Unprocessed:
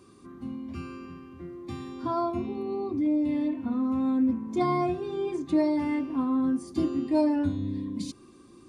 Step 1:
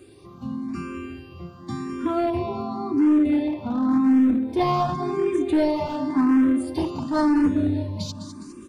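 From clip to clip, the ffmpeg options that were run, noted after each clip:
ffmpeg -i in.wav -filter_complex "[0:a]aecho=1:1:205|410|615|820|1025|1230:0.316|0.177|0.0992|0.0555|0.0311|0.0174,acrossover=split=3200[link_01][link_02];[link_01]asoftclip=type=hard:threshold=-23dB[link_03];[link_03][link_02]amix=inputs=2:normalize=0,asplit=2[link_04][link_05];[link_05]afreqshift=0.91[link_06];[link_04][link_06]amix=inputs=2:normalize=1,volume=9dB" out.wav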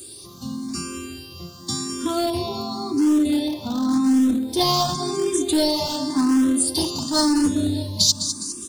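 ffmpeg -i in.wav -af "aexciter=amount=8:drive=8.1:freq=3500" out.wav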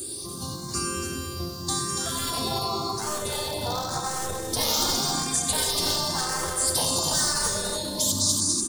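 ffmpeg -i in.wav -filter_complex "[0:a]afftfilt=real='re*lt(hypot(re,im),0.158)':imag='im*lt(hypot(re,im),0.158)':win_size=1024:overlap=0.75,equalizer=frequency=2700:width=1.4:gain=-7,asplit=2[link_01][link_02];[link_02]aecho=0:1:93.29|285.7:0.398|0.501[link_03];[link_01][link_03]amix=inputs=2:normalize=0,volume=5.5dB" out.wav

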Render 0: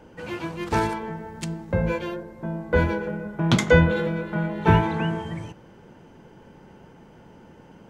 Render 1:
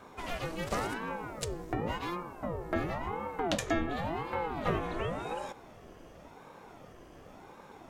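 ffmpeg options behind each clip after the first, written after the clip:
ffmpeg -i in.wav -af "aemphasis=mode=production:type=cd,acompressor=threshold=-30dB:ratio=2.5,aeval=exprs='val(0)*sin(2*PI*430*n/s+430*0.65/0.92*sin(2*PI*0.92*n/s))':channel_layout=same" out.wav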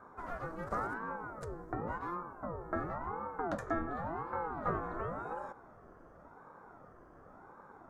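ffmpeg -i in.wav -af "highshelf=frequency=2000:width_type=q:width=3:gain=-12.5,volume=-6dB" out.wav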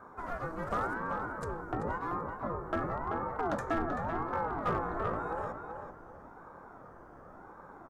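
ffmpeg -i in.wav -filter_complex "[0:a]asplit=2[link_01][link_02];[link_02]aeval=exprs='0.0355*(abs(mod(val(0)/0.0355+3,4)-2)-1)':channel_layout=same,volume=-6dB[link_03];[link_01][link_03]amix=inputs=2:normalize=0,asplit=2[link_04][link_05];[link_05]adelay=385,lowpass=frequency=3600:poles=1,volume=-6dB,asplit=2[link_06][link_07];[link_07]adelay=385,lowpass=frequency=3600:poles=1,volume=0.28,asplit=2[link_08][link_09];[link_09]adelay=385,lowpass=frequency=3600:poles=1,volume=0.28,asplit=2[link_10][link_11];[link_11]adelay=385,lowpass=frequency=3600:poles=1,volume=0.28[link_12];[link_04][link_06][link_08][link_10][link_12]amix=inputs=5:normalize=0" out.wav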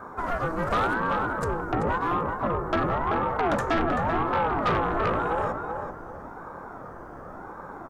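ffmpeg -i in.wav -af "aeval=exprs='0.112*sin(PI/2*2.24*val(0)/0.112)':channel_layout=same" out.wav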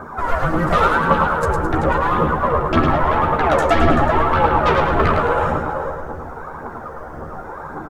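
ffmpeg -i in.wav -filter_complex "[0:a]aphaser=in_gain=1:out_gain=1:delay=2.3:decay=0.56:speed=1.8:type=triangular,asplit=2[link_01][link_02];[link_02]adelay=13,volume=-5dB[link_03];[link_01][link_03]amix=inputs=2:normalize=0,aecho=1:1:107|214|321|428|535:0.562|0.225|0.09|0.036|0.0144,volume=5dB" out.wav

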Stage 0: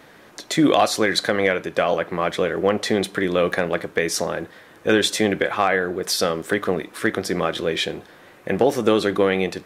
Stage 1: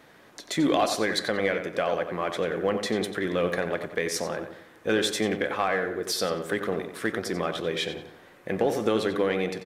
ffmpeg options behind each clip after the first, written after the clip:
ffmpeg -i in.wav -filter_complex "[0:a]asplit=2[link_01][link_02];[link_02]asoftclip=type=hard:threshold=-16.5dB,volume=-11dB[link_03];[link_01][link_03]amix=inputs=2:normalize=0,asplit=2[link_04][link_05];[link_05]adelay=91,lowpass=frequency=3700:poles=1,volume=-8dB,asplit=2[link_06][link_07];[link_07]adelay=91,lowpass=frequency=3700:poles=1,volume=0.42,asplit=2[link_08][link_09];[link_09]adelay=91,lowpass=frequency=3700:poles=1,volume=0.42,asplit=2[link_10][link_11];[link_11]adelay=91,lowpass=frequency=3700:poles=1,volume=0.42,asplit=2[link_12][link_13];[link_13]adelay=91,lowpass=frequency=3700:poles=1,volume=0.42[link_14];[link_04][link_06][link_08][link_10][link_12][link_14]amix=inputs=6:normalize=0,volume=-8.5dB" out.wav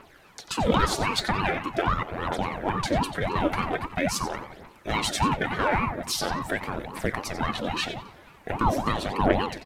ffmpeg -i in.wav -af "aphaser=in_gain=1:out_gain=1:delay=4.6:decay=0.64:speed=0.43:type=triangular,aeval=exprs='val(0)*sin(2*PI*410*n/s+410*0.7/3.6*sin(2*PI*3.6*n/s))':channel_layout=same,volume=1.5dB" out.wav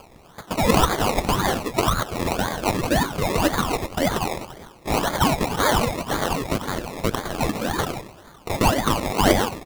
ffmpeg -i in.wav -af "acrusher=samples=23:mix=1:aa=0.000001:lfo=1:lforange=13.8:lforate=1.9,volume=4.5dB" out.wav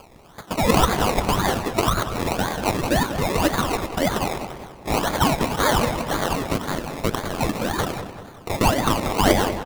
ffmpeg -i in.wav -filter_complex "[0:a]asplit=2[link_01][link_02];[link_02]adelay=191,lowpass=frequency=2700:poles=1,volume=-10dB,asplit=2[link_03][link_04];[link_04]adelay=191,lowpass=frequency=2700:poles=1,volume=0.48,asplit=2[link_05][link_06];[link_06]adelay=191,lowpass=frequency=2700:poles=1,volume=0.48,asplit=2[link_07][link_08];[link_08]adelay=191,lowpass=frequency=2700:poles=1,volume=0.48,asplit=2[link_09][link_10];[link_10]adelay=191,lowpass=frequency=2700:poles=1,volume=0.48[link_11];[link_01][link_03][link_05][link_07][link_09][link_11]amix=inputs=6:normalize=0" out.wav

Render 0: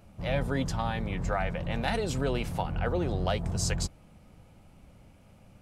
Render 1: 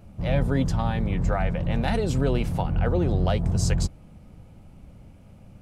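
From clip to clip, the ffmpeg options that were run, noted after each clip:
ffmpeg -i in.wav -af "lowshelf=frequency=460:gain=8.5" out.wav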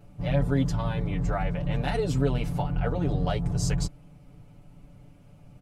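ffmpeg -i in.wav -af "aecho=1:1:6.9:0.99,volume=-5.5dB" out.wav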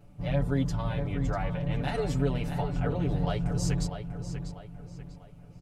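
ffmpeg -i in.wav -filter_complex "[0:a]asplit=2[link_01][link_02];[link_02]adelay=644,lowpass=frequency=4300:poles=1,volume=-8dB,asplit=2[link_03][link_04];[link_04]adelay=644,lowpass=frequency=4300:poles=1,volume=0.41,asplit=2[link_05][link_06];[link_06]adelay=644,lowpass=frequency=4300:poles=1,volume=0.41,asplit=2[link_07][link_08];[link_08]adelay=644,lowpass=frequency=4300:poles=1,volume=0.41,asplit=2[link_09][link_10];[link_10]adelay=644,lowpass=frequency=4300:poles=1,volume=0.41[link_11];[link_01][link_03][link_05][link_07][link_09][link_11]amix=inputs=6:normalize=0,volume=-3dB" out.wav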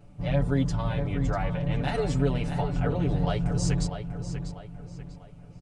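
ffmpeg -i in.wav -af "aresample=22050,aresample=44100,volume=2.5dB" out.wav

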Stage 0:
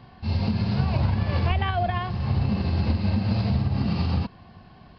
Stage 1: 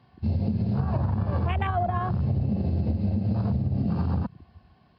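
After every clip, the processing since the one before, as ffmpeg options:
ffmpeg -i in.wav -af "afwtdn=0.0282,highpass=67,acompressor=threshold=-28dB:ratio=6,volume=6dB" out.wav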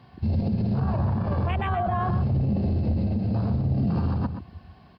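ffmpeg -i in.wav -af "alimiter=level_in=1.5dB:limit=-24dB:level=0:latency=1:release=19,volume=-1.5dB,aecho=1:1:127:0.355,volume=7dB" out.wav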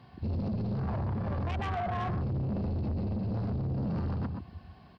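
ffmpeg -i in.wav -af "asoftclip=type=tanh:threshold=-26dB,volume=-2.5dB" out.wav

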